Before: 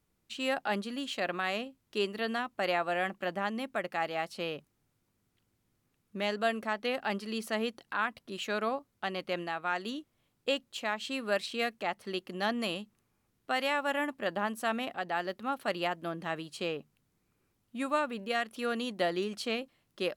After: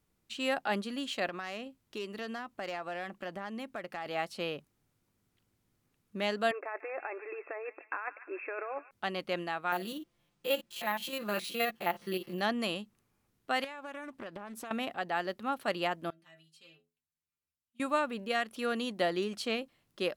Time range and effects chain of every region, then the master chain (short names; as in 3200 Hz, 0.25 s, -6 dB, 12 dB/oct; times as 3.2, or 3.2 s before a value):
1.28–4.06 self-modulated delay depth 0.051 ms + compressor 2.5:1, threshold -38 dBFS
6.51–8.91 negative-ratio compressor -36 dBFS + brick-wall FIR band-pass 290–2700 Hz + thin delay 0.146 s, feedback 55%, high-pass 1600 Hz, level -10 dB
9.72–12.41 stepped spectrum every 50 ms + comb 5.8 ms, depth 59% + careless resampling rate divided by 3×, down none, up hold
13.64–14.71 compressor 12:1, threshold -39 dBFS + Doppler distortion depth 0.31 ms
16.1–17.8 passive tone stack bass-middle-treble 5-5-5 + metallic resonator 78 Hz, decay 0.38 s, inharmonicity 0.008
whole clip: dry